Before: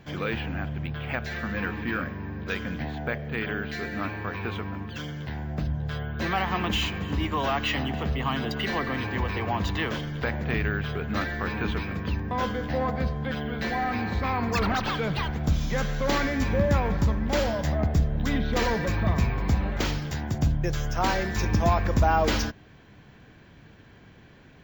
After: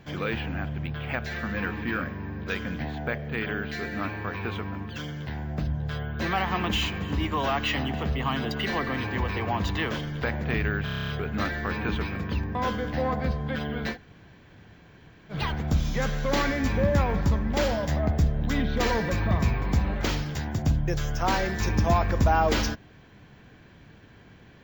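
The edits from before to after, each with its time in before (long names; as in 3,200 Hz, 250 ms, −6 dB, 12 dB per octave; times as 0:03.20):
0:10.84: stutter 0.03 s, 9 plays
0:13.69–0:15.10: fill with room tone, crossfade 0.10 s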